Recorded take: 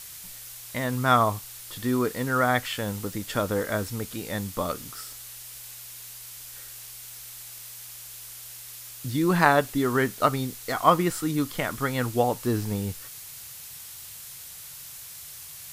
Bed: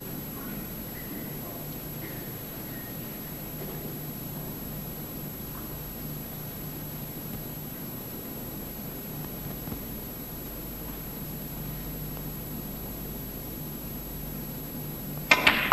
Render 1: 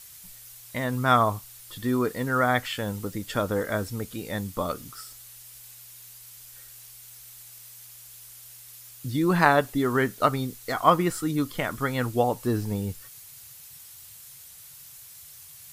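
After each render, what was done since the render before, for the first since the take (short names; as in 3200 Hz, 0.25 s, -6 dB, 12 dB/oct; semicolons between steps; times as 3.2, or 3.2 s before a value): denoiser 7 dB, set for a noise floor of -43 dBFS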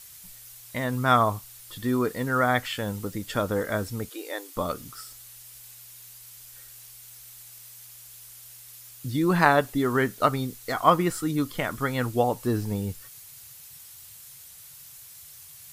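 4.09–4.56 brick-wall FIR high-pass 280 Hz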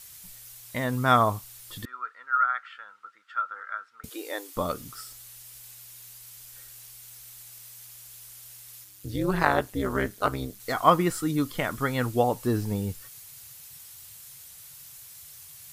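1.85–4.04 ladder band-pass 1400 Hz, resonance 85%; 8.84–10.6 AM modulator 200 Hz, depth 80%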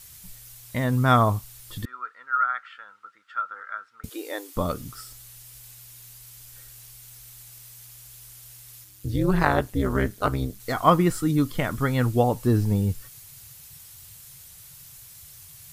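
low shelf 220 Hz +10 dB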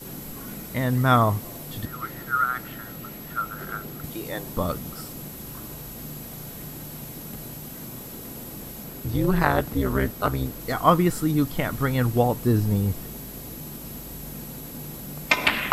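add bed -1 dB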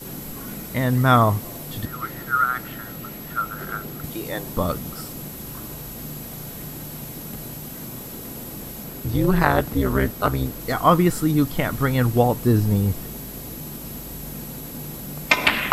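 gain +3 dB; limiter -3 dBFS, peak gain reduction 2.5 dB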